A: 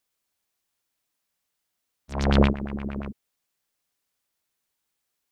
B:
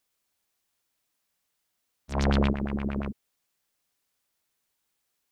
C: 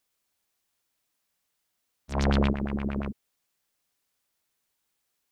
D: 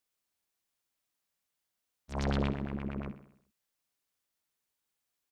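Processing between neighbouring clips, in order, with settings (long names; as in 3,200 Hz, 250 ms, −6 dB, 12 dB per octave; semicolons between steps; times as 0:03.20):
brickwall limiter −16.5 dBFS, peak gain reduction 9.5 dB; level +1.5 dB
no processing that can be heard
repeating echo 65 ms, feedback 57%, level −13 dB; level −7 dB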